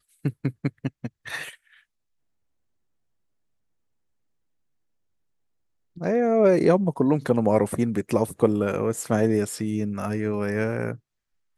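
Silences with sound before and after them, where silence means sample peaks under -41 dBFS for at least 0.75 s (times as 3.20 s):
1.55–5.97 s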